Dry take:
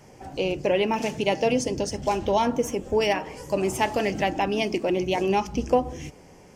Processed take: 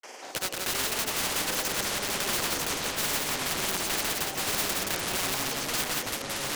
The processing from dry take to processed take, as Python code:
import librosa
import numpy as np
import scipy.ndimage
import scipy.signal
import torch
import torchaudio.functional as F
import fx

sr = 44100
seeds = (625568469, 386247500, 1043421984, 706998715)

p1 = scipy.signal.sosfilt(scipy.signal.butter(4, 480.0, 'highpass', fs=sr, output='sos'), x)
p2 = fx.high_shelf(p1, sr, hz=6300.0, db=-5.5)
p3 = (np.mod(10.0 ** (25.5 / 20.0) * p2 + 1.0, 2.0) - 1.0) / 10.0 ** (25.5 / 20.0)
p4 = fx.granulator(p3, sr, seeds[0], grain_ms=100.0, per_s=20.0, spray_ms=100.0, spread_st=0)
p5 = fx.echo_pitch(p4, sr, ms=174, semitones=-6, count=3, db_per_echo=-3.0)
p6 = p5 + fx.echo_multitap(p5, sr, ms=(175, 668), db=(-5.0, -16.0), dry=0)
p7 = fx.spectral_comp(p6, sr, ratio=2.0)
y = p7 * librosa.db_to_amplitude(6.0)